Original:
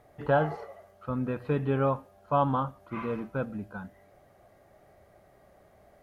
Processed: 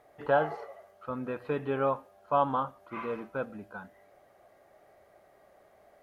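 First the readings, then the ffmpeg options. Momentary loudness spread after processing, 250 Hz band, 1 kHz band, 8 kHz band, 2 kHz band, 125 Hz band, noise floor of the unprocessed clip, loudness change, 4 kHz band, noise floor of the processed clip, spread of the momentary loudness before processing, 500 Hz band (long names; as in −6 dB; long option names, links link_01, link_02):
17 LU, −5.5 dB, 0.0 dB, can't be measured, 0.0 dB, −10.5 dB, −60 dBFS, −2.0 dB, −0.5 dB, −62 dBFS, 16 LU, −1.0 dB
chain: -af "bass=frequency=250:gain=-12,treble=frequency=4000:gain=-2"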